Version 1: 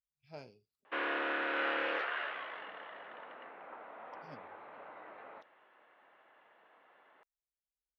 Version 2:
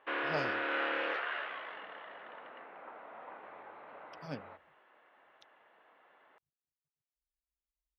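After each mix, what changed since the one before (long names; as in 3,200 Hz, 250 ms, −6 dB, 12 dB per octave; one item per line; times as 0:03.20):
speech +11.5 dB
background: entry −0.85 s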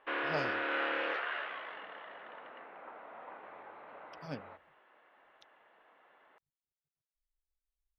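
master: remove high-pass filter 47 Hz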